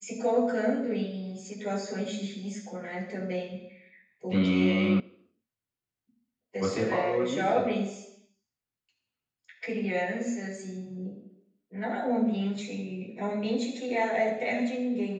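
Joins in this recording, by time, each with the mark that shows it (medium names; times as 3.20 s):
5.00 s: sound stops dead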